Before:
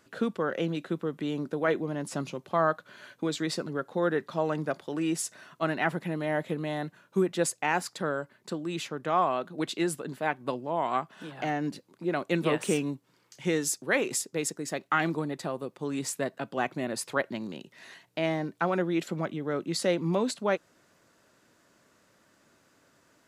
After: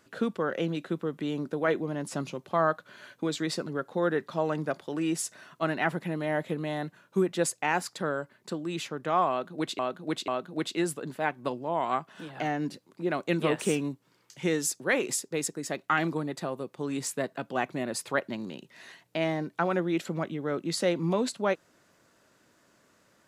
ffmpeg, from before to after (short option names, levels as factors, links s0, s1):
-filter_complex "[0:a]asplit=3[s0][s1][s2];[s0]atrim=end=9.792[s3];[s1]atrim=start=9.298:end=9.792[s4];[s2]atrim=start=9.298[s5];[s3][s4]acrossfade=d=0.004:c1=hsin:c2=hsin[s6];[s6][s5]acrossfade=d=0.004:c1=hsin:c2=hsin"